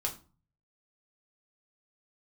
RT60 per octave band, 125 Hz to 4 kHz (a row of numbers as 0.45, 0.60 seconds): 0.80, 0.50, 0.40, 0.35, 0.30, 0.25 seconds